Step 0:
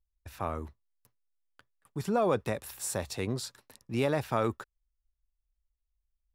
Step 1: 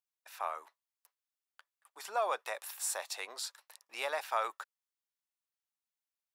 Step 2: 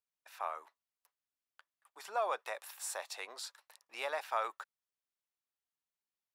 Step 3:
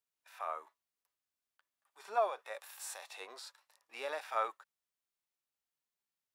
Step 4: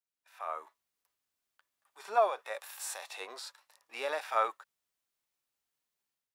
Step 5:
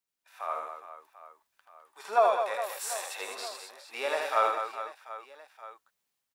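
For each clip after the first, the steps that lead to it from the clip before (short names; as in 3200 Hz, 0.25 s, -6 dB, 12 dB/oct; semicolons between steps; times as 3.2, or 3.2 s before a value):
HPF 700 Hz 24 dB/oct
high shelf 4800 Hz -5.5 dB; gain -1.5 dB
harmonic-percussive split percussive -17 dB; gain +5 dB
AGC gain up to 10.5 dB; gain -5.5 dB
reverse bouncing-ball echo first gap 80 ms, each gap 1.6×, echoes 5; gain +3 dB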